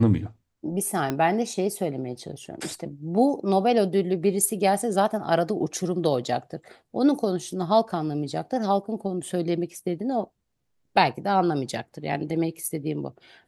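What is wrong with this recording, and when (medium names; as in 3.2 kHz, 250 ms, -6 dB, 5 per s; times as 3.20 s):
1.10 s: pop -12 dBFS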